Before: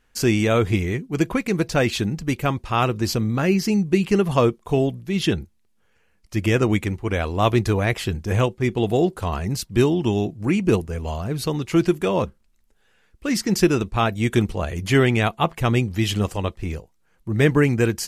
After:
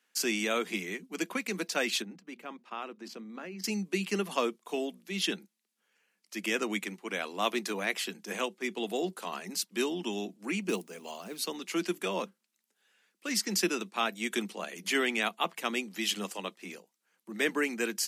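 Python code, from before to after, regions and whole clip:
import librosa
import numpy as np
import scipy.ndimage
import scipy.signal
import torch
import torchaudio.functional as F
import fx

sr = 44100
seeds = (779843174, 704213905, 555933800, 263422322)

y = fx.chain(x, sr, fx.lowpass(hz=1500.0, slope=6),
    fx.hum_notches(base_hz=60, count=4),
    fx.level_steps(step_db=14), at=(2.02, 3.64))
y = fx.chain(y, sr, fx.block_float(bits=7),
    fx.peak_eq(hz=1600.0, db=-3.5, octaves=0.83), at=(10.69, 11.46))
y = scipy.signal.sosfilt(scipy.signal.butter(16, 180.0, 'highpass', fs=sr, output='sos'), y)
y = fx.tilt_shelf(y, sr, db=-6.0, hz=1300.0)
y = y * 10.0 ** (-8.0 / 20.0)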